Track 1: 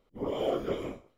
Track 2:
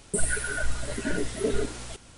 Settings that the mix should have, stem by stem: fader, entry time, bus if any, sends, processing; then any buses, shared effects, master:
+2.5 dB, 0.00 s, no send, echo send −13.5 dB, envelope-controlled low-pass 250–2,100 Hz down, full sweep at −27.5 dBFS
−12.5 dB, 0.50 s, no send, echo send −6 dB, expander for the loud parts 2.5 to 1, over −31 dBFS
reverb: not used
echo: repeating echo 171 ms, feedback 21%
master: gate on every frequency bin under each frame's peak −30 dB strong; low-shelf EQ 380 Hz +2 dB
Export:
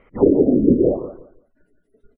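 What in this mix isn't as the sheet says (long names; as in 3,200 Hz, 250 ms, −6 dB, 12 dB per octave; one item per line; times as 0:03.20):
stem 1 +2.5 dB → +13.5 dB
stem 2 −12.5 dB → −22.0 dB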